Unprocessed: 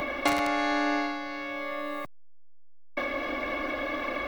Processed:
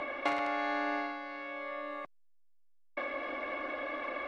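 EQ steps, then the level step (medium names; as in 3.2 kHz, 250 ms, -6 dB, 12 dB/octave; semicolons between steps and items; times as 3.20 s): low-pass 8.2 kHz 12 dB/octave; tone controls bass -13 dB, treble -13 dB; -5.0 dB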